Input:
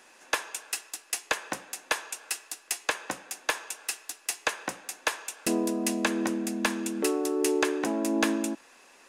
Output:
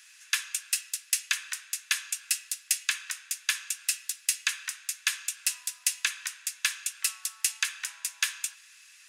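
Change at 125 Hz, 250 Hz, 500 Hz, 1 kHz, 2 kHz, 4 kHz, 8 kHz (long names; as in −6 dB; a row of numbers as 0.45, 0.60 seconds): below −40 dB, below −40 dB, below −40 dB, −13.0 dB, 0.0 dB, +4.0 dB, +5.0 dB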